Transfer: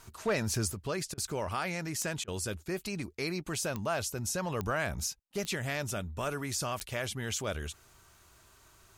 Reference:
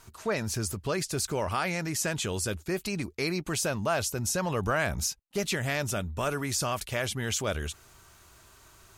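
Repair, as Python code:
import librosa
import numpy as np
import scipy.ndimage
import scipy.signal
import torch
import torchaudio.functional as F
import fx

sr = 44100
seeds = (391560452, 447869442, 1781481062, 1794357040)

y = fx.fix_declip(x, sr, threshold_db=-22.0)
y = fx.fix_declick_ar(y, sr, threshold=10.0)
y = fx.fix_interpolate(y, sr, at_s=(1.14, 2.24), length_ms=36.0)
y = fx.fix_level(y, sr, at_s=0.7, step_db=4.5)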